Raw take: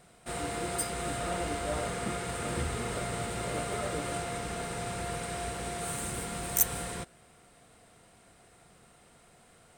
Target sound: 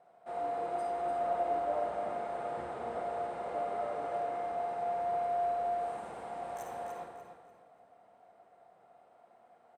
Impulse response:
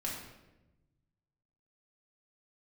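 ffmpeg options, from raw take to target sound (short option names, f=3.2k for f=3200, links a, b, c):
-filter_complex "[0:a]bandpass=f=720:t=q:w=3:csg=0,aecho=1:1:294|588|882|1176:0.376|0.113|0.0338|0.0101,asplit=2[a][b];[1:a]atrim=start_sample=2205,adelay=51[c];[b][c]afir=irnorm=-1:irlink=0,volume=-6dB[d];[a][d]amix=inputs=2:normalize=0,volume=3dB"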